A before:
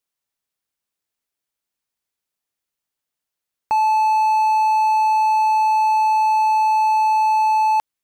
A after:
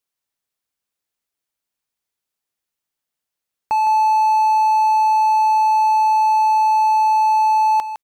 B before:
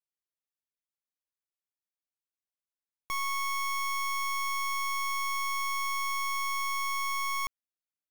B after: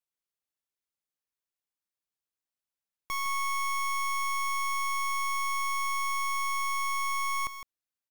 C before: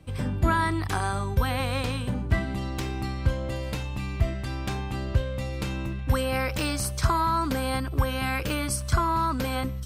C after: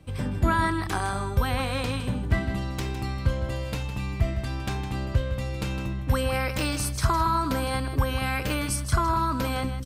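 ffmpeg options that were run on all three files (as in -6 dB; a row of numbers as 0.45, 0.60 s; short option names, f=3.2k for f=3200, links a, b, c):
-af "aecho=1:1:159:0.299"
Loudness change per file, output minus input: +1.5, +1.0, +0.5 LU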